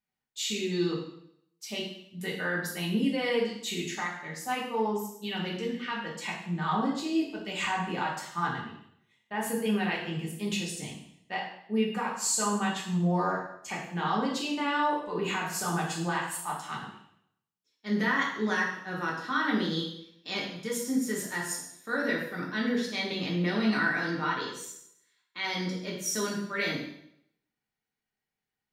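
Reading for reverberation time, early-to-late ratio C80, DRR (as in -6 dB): 0.70 s, 7.5 dB, -4.5 dB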